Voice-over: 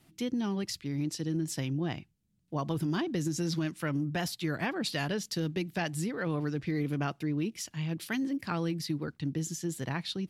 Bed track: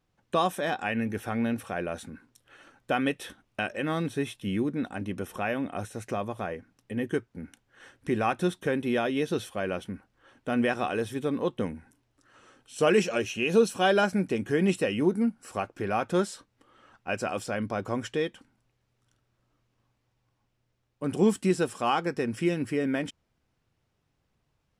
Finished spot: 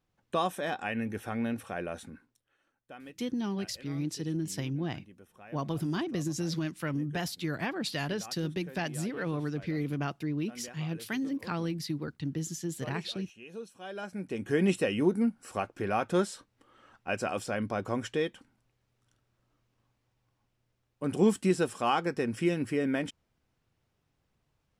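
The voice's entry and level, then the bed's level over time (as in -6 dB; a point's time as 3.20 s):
3.00 s, -1.0 dB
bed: 2.14 s -4 dB
2.56 s -21 dB
13.82 s -21 dB
14.54 s -1.5 dB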